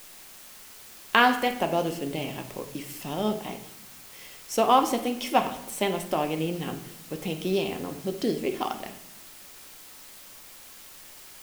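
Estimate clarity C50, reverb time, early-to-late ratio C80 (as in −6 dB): 10.0 dB, 0.75 s, 13.0 dB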